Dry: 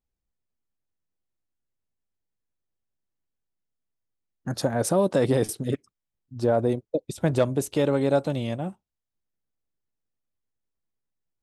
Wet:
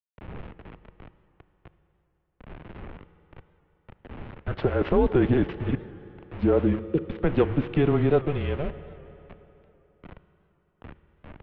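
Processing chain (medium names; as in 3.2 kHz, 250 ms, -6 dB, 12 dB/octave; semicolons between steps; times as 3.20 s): tracing distortion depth 0.12 ms; wind noise 81 Hz -40 dBFS; in parallel at +2.5 dB: compression 10:1, threshold -36 dBFS, peak gain reduction 19.5 dB; on the sum: small samples zeroed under -32 dBFS; on a send at -13.5 dB: reverberation RT60 3.4 s, pre-delay 30 ms; on the sum: mistuned SSB -150 Hz 170–3100 Hz; warped record 78 rpm, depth 100 cents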